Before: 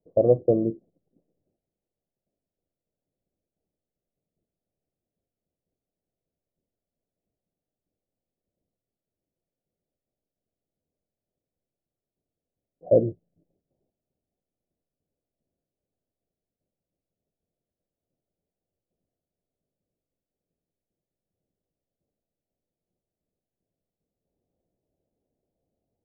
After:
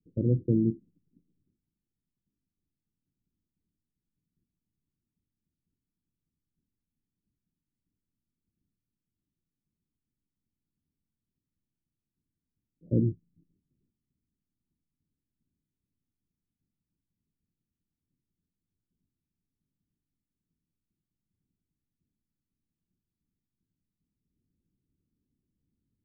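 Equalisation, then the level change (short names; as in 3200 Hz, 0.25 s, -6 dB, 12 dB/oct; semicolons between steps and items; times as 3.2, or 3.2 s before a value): inverse Chebyshev low-pass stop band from 740 Hz, stop band 50 dB; +4.0 dB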